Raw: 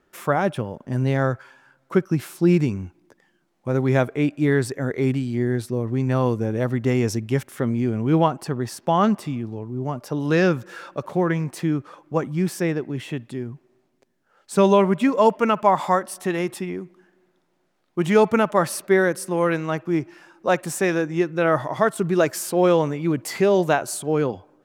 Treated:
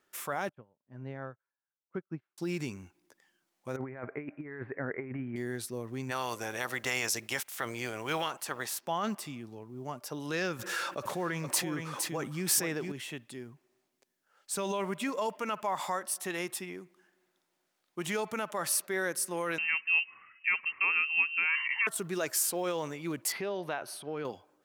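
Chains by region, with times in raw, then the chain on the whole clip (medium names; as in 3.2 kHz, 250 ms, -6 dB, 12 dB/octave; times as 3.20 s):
0.49–2.38 s: low-pass 1.7 kHz + bass shelf 250 Hz +5.5 dB + upward expansion 2.5:1, over -35 dBFS
3.76–5.36 s: steep low-pass 2.2 kHz 48 dB/octave + compressor with a negative ratio -23 dBFS, ratio -0.5
6.10–8.80 s: spectral peaks clipped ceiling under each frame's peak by 16 dB + peaking EQ 240 Hz -4 dB 2 oct
10.59–12.92 s: delay 462 ms -9.5 dB + level flattener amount 50%
19.58–21.87 s: distance through air 210 m + comb 1.1 ms, depth 40% + frequency inversion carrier 2.9 kHz
23.32–24.25 s: compression 3:1, threshold -20 dBFS + boxcar filter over 6 samples
whole clip: peak limiter -12.5 dBFS; tilt EQ +3 dB/octave; trim -8.5 dB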